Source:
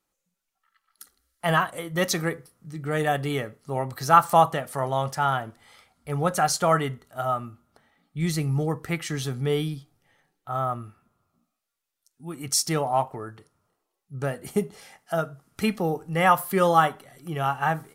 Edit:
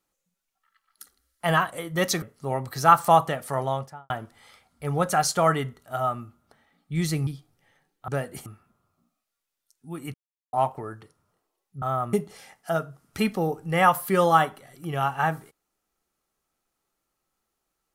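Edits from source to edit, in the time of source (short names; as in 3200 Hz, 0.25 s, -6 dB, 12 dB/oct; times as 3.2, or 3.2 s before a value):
2.22–3.47 cut
4.85–5.35 studio fade out
8.52–9.7 cut
10.51–10.82 swap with 14.18–14.56
12.5–12.89 mute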